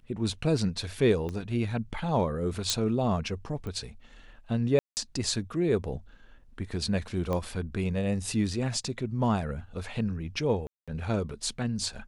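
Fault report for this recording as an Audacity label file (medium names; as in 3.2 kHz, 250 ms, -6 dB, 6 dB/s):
1.290000	1.290000	pop -23 dBFS
2.700000	2.700000	pop -11 dBFS
3.670000	3.670000	pop -26 dBFS
4.790000	4.970000	dropout 179 ms
7.330000	7.330000	pop -19 dBFS
10.670000	10.880000	dropout 206 ms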